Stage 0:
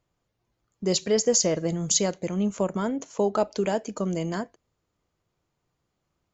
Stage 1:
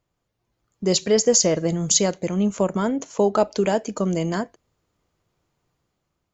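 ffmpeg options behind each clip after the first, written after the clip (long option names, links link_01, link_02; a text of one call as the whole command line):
ffmpeg -i in.wav -af "dynaudnorm=framelen=140:gausssize=9:maxgain=5dB" out.wav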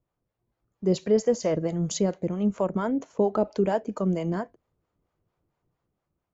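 ffmpeg -i in.wav -filter_complex "[0:a]highshelf=frequency=5200:gain=-7,acrossover=split=510[link_01][link_02];[link_01]aeval=exprs='val(0)*(1-0.7/2+0.7/2*cos(2*PI*4.4*n/s))':channel_layout=same[link_03];[link_02]aeval=exprs='val(0)*(1-0.7/2-0.7/2*cos(2*PI*4.4*n/s))':channel_layout=same[link_04];[link_03][link_04]amix=inputs=2:normalize=0,highshelf=frequency=2300:gain=-11" out.wav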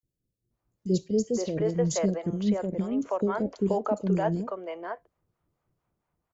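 ffmpeg -i in.wav -filter_complex "[0:a]acrossover=split=440|3600[link_01][link_02][link_03];[link_01]adelay=30[link_04];[link_02]adelay=510[link_05];[link_04][link_05][link_03]amix=inputs=3:normalize=0" out.wav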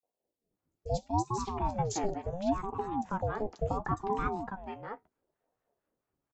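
ffmpeg -i in.wav -filter_complex "[0:a]asplit=2[link_01][link_02];[link_02]adelay=14,volume=-13dB[link_03];[link_01][link_03]amix=inputs=2:normalize=0,aeval=exprs='val(0)*sin(2*PI*410*n/s+410*0.5/0.72*sin(2*PI*0.72*n/s))':channel_layout=same,volume=-3dB" out.wav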